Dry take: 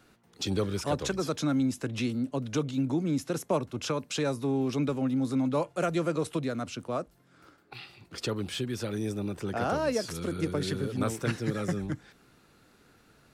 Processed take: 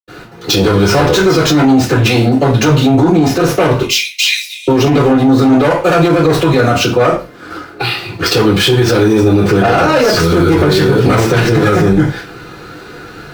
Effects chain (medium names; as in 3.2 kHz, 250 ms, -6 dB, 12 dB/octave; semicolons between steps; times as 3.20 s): median filter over 5 samples; 3.74–4.60 s: steep high-pass 2 kHz 96 dB/octave; Chebyshev shaper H 5 -10 dB, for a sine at -16.5 dBFS; reverberation RT60 0.30 s, pre-delay 77 ms; loudness maximiser +34 dB; trim -1 dB